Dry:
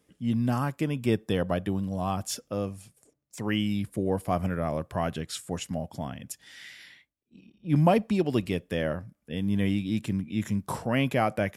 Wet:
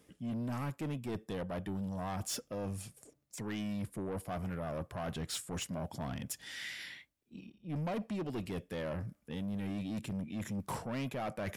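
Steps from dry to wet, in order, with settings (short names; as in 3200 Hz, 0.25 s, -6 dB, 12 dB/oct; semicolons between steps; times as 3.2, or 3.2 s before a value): reverse; compressor 4:1, threshold -35 dBFS, peak gain reduction 15.5 dB; reverse; soft clip -37 dBFS, distortion -9 dB; gain +4 dB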